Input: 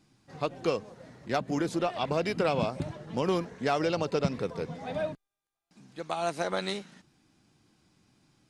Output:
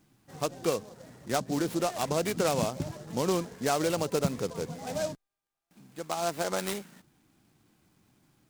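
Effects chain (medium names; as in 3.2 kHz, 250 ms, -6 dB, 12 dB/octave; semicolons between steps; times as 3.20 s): delay time shaken by noise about 5.3 kHz, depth 0.057 ms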